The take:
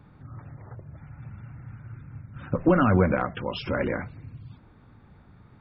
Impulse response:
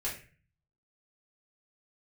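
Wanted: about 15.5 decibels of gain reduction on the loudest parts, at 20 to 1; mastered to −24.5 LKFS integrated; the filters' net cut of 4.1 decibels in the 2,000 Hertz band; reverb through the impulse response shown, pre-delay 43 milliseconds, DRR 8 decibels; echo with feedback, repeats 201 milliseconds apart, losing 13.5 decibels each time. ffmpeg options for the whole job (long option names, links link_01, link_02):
-filter_complex "[0:a]equalizer=frequency=2000:width_type=o:gain=-6.5,acompressor=threshold=-30dB:ratio=20,aecho=1:1:201|402:0.211|0.0444,asplit=2[link_01][link_02];[1:a]atrim=start_sample=2205,adelay=43[link_03];[link_02][link_03]afir=irnorm=-1:irlink=0,volume=-11.5dB[link_04];[link_01][link_04]amix=inputs=2:normalize=0,volume=14dB"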